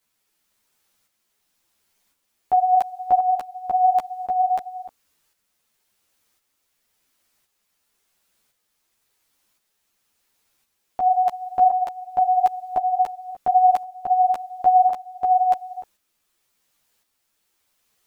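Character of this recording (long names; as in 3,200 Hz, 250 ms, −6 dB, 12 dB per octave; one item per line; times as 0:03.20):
a quantiser's noise floor 12 bits, dither triangular
tremolo saw up 0.94 Hz, depth 50%
a shimmering, thickened sound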